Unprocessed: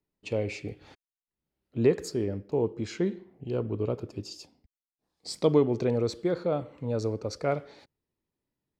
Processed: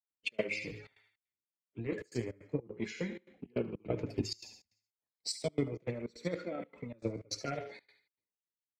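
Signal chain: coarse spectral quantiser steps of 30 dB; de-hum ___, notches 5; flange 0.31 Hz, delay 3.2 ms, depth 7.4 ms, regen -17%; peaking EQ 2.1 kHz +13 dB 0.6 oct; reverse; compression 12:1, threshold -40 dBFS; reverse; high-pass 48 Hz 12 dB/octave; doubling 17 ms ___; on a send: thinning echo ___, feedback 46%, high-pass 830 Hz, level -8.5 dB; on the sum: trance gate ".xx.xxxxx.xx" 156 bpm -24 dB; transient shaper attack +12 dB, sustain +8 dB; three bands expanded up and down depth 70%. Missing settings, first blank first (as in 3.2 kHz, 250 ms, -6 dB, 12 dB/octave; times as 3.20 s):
105.7 Hz, -14 dB, 74 ms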